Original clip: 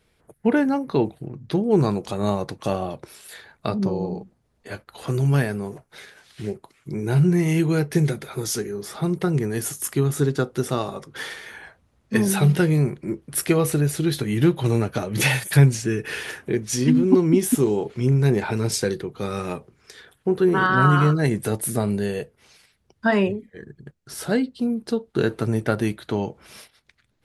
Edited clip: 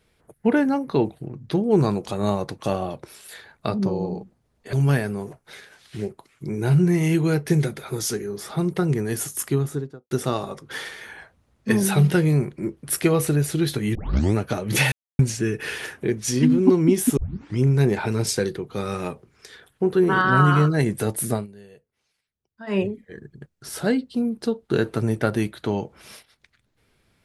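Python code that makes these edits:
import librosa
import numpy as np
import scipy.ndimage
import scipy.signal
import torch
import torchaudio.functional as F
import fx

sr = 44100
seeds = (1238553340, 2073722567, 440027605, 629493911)

y = fx.studio_fade_out(x, sr, start_s=9.86, length_s=0.7)
y = fx.edit(y, sr, fx.cut(start_s=4.73, length_s=0.45),
    fx.tape_start(start_s=14.4, length_s=0.4),
    fx.silence(start_s=15.37, length_s=0.27),
    fx.tape_start(start_s=17.62, length_s=0.41),
    fx.fade_down_up(start_s=21.78, length_s=1.47, db=-20.5, fade_s=0.14), tone=tone)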